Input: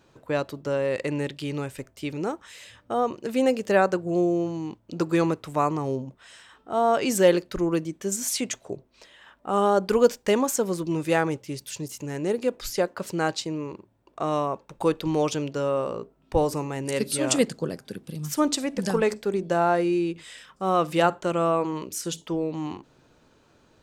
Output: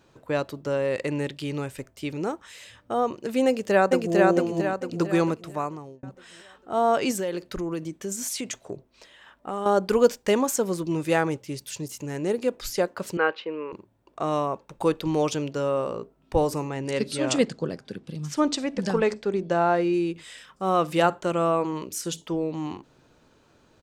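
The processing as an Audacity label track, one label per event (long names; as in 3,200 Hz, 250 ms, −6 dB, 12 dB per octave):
3.460000	4.160000	delay throw 450 ms, feedback 45%, level −1 dB
5.210000	6.030000	fade out
7.110000	9.660000	downward compressor 4 to 1, threshold −27 dBFS
13.170000	13.730000	loudspeaker in its box 400–2,900 Hz, peaks and dips at 480 Hz +9 dB, 690 Hz −7 dB, 1,100 Hz +4 dB, 1,500 Hz +6 dB, 2,800 Hz +5 dB
16.690000	19.940000	low-pass filter 5,900 Hz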